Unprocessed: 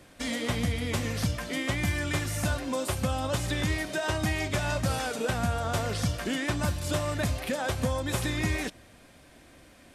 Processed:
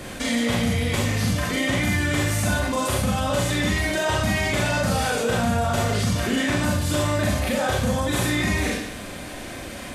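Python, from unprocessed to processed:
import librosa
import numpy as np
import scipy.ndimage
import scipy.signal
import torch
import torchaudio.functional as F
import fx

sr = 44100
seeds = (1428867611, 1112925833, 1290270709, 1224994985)

y = fx.notch(x, sr, hz=5300.0, q=28.0)
y = fx.rev_schroeder(y, sr, rt60_s=0.51, comb_ms=30, drr_db=-3.5)
y = fx.env_flatten(y, sr, amount_pct=50)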